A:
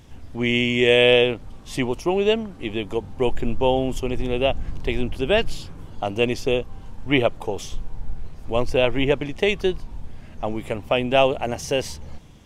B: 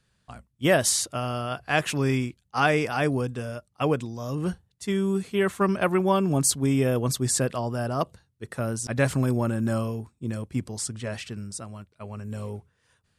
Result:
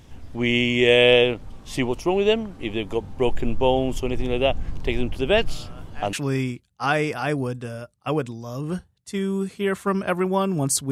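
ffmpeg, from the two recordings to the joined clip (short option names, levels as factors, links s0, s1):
-filter_complex "[1:a]asplit=2[s0][s1];[0:a]apad=whole_dur=10.91,atrim=end=10.91,atrim=end=6.132[s2];[s1]atrim=start=1.868:end=6.65[s3];[s0]atrim=start=1.22:end=1.87,asetpts=PTS-STARTPTS,volume=0.15,afade=t=in:d=0.004:c=hsin,afade=t=out:st=0.646:d=0.004:c=hsin,adelay=5480[s4];[s2][s3]acrossfade=d=0.004:c1=hsin:c2=hsin[s5];[s5][s4]amix=inputs=2:normalize=0"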